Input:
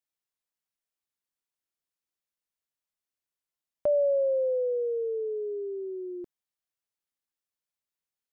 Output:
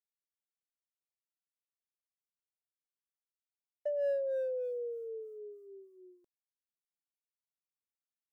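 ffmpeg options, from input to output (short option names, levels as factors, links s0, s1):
-filter_complex "[0:a]agate=range=0.0224:threshold=0.0501:ratio=3:detection=peak,bass=f=250:g=8,treble=f=4000:g=14,asplit=2[s0][s1];[s1]volume=21.1,asoftclip=hard,volume=0.0473,volume=0.355[s2];[s0][s2]amix=inputs=2:normalize=0,acrossover=split=500[s3][s4];[s3]aeval=exprs='val(0)*(1-1/2+1/2*cos(2*PI*3.3*n/s))':c=same[s5];[s4]aeval=exprs='val(0)*(1-1/2-1/2*cos(2*PI*3.3*n/s))':c=same[s6];[s5][s6]amix=inputs=2:normalize=0,volume=0.631"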